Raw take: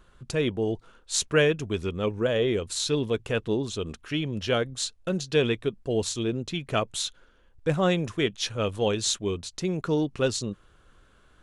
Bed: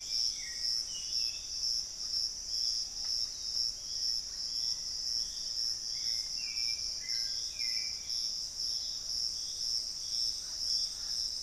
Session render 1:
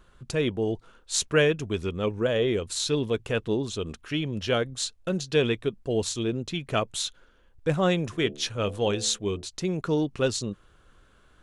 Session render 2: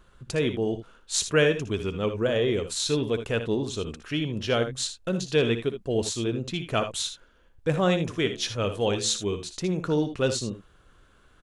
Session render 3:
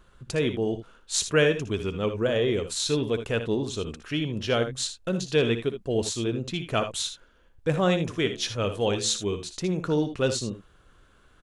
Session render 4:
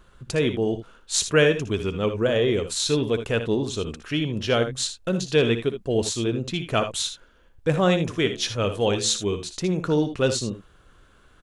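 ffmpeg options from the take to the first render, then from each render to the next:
-filter_complex "[0:a]asplit=3[a][b][c];[a]afade=t=out:st=8.11:d=0.02[d];[b]bandreject=f=72.33:t=h:w=4,bandreject=f=144.66:t=h:w=4,bandreject=f=216.99:t=h:w=4,bandreject=f=289.32:t=h:w=4,bandreject=f=361.65:t=h:w=4,bandreject=f=433.98:t=h:w=4,bandreject=f=506.31:t=h:w=4,bandreject=f=578.64:t=h:w=4,bandreject=f=650.97:t=h:w=4,bandreject=f=723.3:t=h:w=4,bandreject=f=795.63:t=h:w=4,afade=t=in:st=8.11:d=0.02,afade=t=out:st=9.44:d=0.02[e];[c]afade=t=in:st=9.44:d=0.02[f];[d][e][f]amix=inputs=3:normalize=0"
-af "aecho=1:1:60|77:0.237|0.251"
-af anull
-af "volume=3dB"

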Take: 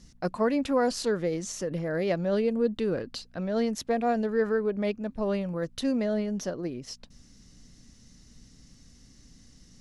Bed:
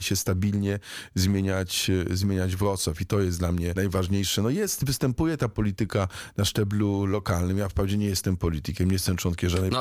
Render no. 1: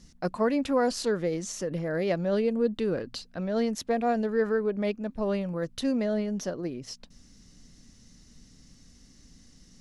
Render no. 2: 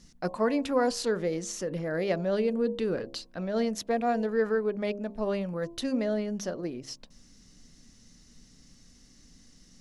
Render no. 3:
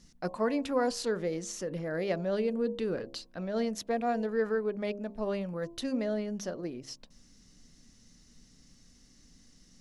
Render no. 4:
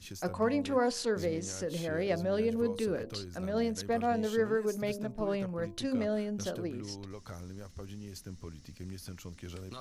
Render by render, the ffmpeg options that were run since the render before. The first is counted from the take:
-af "bandreject=f=60:t=h:w=4,bandreject=f=120:t=h:w=4"
-af "equalizer=f=73:w=0.47:g=-4,bandreject=f=67.72:t=h:w=4,bandreject=f=135.44:t=h:w=4,bandreject=f=203.16:t=h:w=4,bandreject=f=270.88:t=h:w=4,bandreject=f=338.6:t=h:w=4,bandreject=f=406.32:t=h:w=4,bandreject=f=474.04:t=h:w=4,bandreject=f=541.76:t=h:w=4,bandreject=f=609.48:t=h:w=4,bandreject=f=677.2:t=h:w=4,bandreject=f=744.92:t=h:w=4,bandreject=f=812.64:t=h:w=4,bandreject=f=880.36:t=h:w=4,bandreject=f=948.08:t=h:w=4,bandreject=f=1.0158k:t=h:w=4,bandreject=f=1.08352k:t=h:w=4"
-af "volume=-3dB"
-filter_complex "[1:a]volume=-19.5dB[a];[0:a][a]amix=inputs=2:normalize=0"

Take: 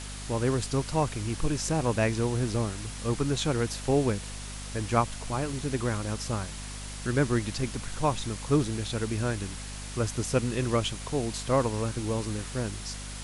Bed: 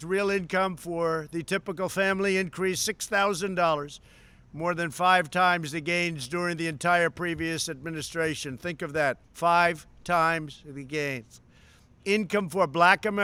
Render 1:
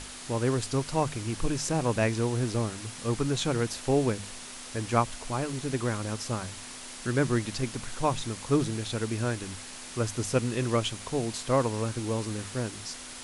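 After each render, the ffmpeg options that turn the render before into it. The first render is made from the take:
-af "bandreject=f=50:t=h:w=6,bandreject=f=100:t=h:w=6,bandreject=f=150:t=h:w=6,bandreject=f=200:t=h:w=6"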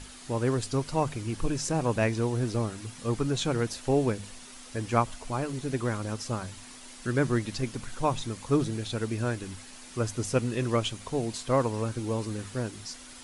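-af "afftdn=nr=7:nf=-43"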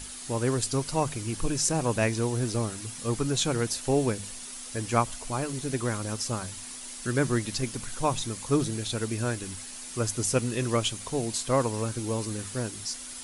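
-af "aemphasis=mode=production:type=50kf"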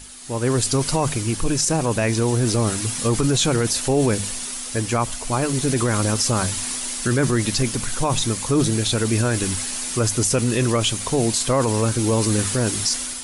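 -af "dynaudnorm=f=210:g=5:m=16.5dB,alimiter=limit=-10.5dB:level=0:latency=1:release=18"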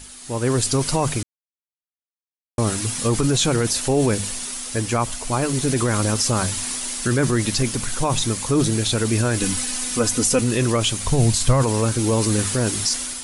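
-filter_complex "[0:a]asettb=1/sr,asplit=3[a][b][c];[a]atrim=end=9.404[d];[b]atrim=start=9.4:end=10.41,asetpts=PTS-STARTPTS,afade=t=in:d=0.004:c=qsin,afade=t=out:st=1.006:d=0.004:c=qsin,aecho=1:1:4:0.66,atrim=end_sample=44541[e];[c]atrim=start=10.406[f];[d][e]acrossfade=d=0.004:c1=hsin:c2=qsin[g];[g][f]acrossfade=d=0.004:c1=qsin:c2=hsin,asplit=3[h][i][j];[h]afade=t=out:st=11.03:d=0.02[k];[i]asubboost=boost=5.5:cutoff=130,afade=t=in:st=11.03:d=0.02,afade=t=out:st=11.62:d=0.02[l];[j]afade=t=in:st=11.62:d=0.02[m];[k][l][m]amix=inputs=3:normalize=0,asplit=3[n][o][p];[n]atrim=end=1.23,asetpts=PTS-STARTPTS,afade=t=out:st=1.226:d=0.004:c=hsin[q];[o]atrim=start=1.23:end=2.58,asetpts=PTS-STARTPTS,volume=0[r];[p]atrim=start=2.58,asetpts=PTS-STARTPTS,afade=t=in:d=0.004:c=hsin[s];[q][r][s]concat=n=3:v=0:a=1"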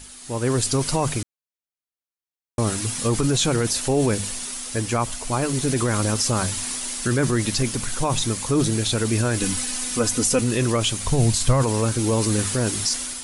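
-af "volume=-1.5dB"

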